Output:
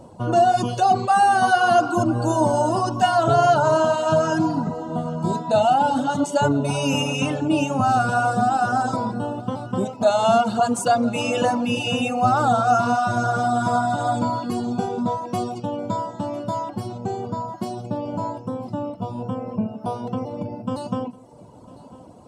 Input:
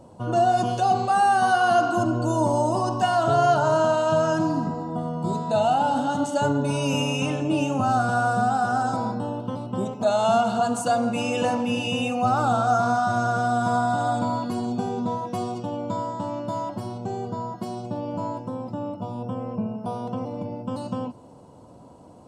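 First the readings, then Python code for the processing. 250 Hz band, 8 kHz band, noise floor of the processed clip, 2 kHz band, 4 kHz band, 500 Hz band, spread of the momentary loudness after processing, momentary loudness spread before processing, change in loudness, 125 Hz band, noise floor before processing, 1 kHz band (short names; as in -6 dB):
+2.5 dB, +3.5 dB, -44 dBFS, +2.5 dB, +3.0 dB, +2.5 dB, 12 LU, 12 LU, +2.5 dB, +2.0 dB, -47 dBFS, +2.5 dB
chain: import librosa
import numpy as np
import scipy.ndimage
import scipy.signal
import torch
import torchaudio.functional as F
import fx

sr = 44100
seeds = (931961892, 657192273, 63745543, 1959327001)

p1 = fx.dereverb_blind(x, sr, rt60_s=0.83)
p2 = p1 + fx.echo_single(p1, sr, ms=1000, db=-20.0, dry=0)
y = F.gain(torch.from_numpy(p2), 4.5).numpy()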